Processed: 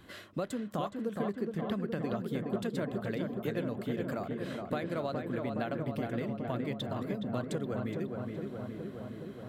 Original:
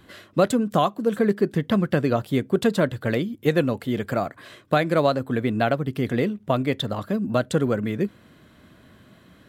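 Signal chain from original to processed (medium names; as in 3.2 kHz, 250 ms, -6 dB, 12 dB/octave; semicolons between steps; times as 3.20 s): compression 2.5:1, threshold -35 dBFS, peak gain reduction 14.5 dB; filtered feedback delay 418 ms, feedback 78%, low-pass 2.1 kHz, level -4 dB; trim -3.5 dB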